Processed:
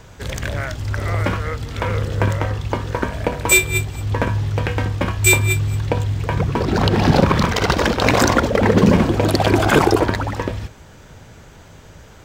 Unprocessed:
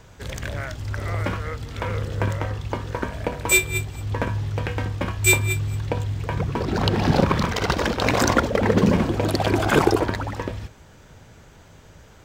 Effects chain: maximiser +6.5 dB; gain -1 dB

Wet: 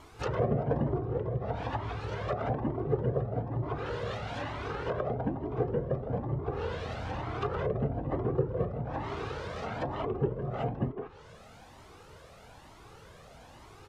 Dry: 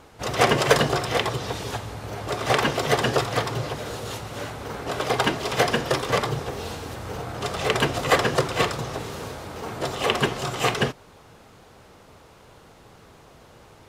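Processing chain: speakerphone echo 0.16 s, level -6 dB; treble ducked by the level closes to 390 Hz, closed at -21.5 dBFS; cascading flanger rising 1.1 Hz; gain +1.5 dB

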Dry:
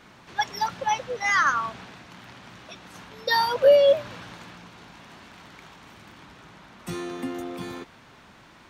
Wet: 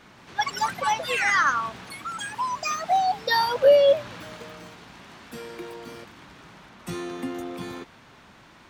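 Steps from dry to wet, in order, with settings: echoes that change speed 0.174 s, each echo +5 st, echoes 3, each echo -6 dB

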